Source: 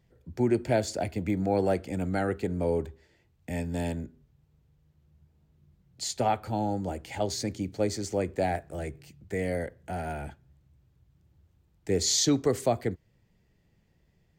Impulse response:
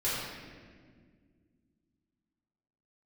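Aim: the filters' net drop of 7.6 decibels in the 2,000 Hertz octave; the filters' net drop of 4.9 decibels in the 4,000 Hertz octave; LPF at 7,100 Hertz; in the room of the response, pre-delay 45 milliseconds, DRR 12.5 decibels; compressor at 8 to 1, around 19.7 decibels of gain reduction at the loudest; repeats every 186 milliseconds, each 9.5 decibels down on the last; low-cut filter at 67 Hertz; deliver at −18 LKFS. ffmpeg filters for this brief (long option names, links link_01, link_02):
-filter_complex "[0:a]highpass=67,lowpass=7100,equalizer=frequency=2000:width_type=o:gain=-9,equalizer=frequency=4000:width_type=o:gain=-3.5,acompressor=threshold=-41dB:ratio=8,aecho=1:1:186|372|558|744:0.335|0.111|0.0365|0.012,asplit=2[link_01][link_02];[1:a]atrim=start_sample=2205,adelay=45[link_03];[link_02][link_03]afir=irnorm=-1:irlink=0,volume=-21dB[link_04];[link_01][link_04]amix=inputs=2:normalize=0,volume=27dB"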